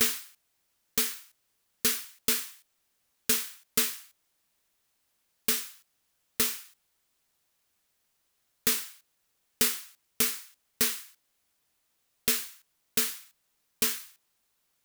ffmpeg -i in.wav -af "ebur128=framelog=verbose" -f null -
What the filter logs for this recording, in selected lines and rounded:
Integrated loudness:
  I:         -28.6 LUFS
  Threshold: -40.1 LUFS
Loudness range:
  LRA:         4.0 LU
  Threshold: -51.6 LUFS
  LRA low:   -33.9 LUFS
  LRA high:  -29.9 LUFS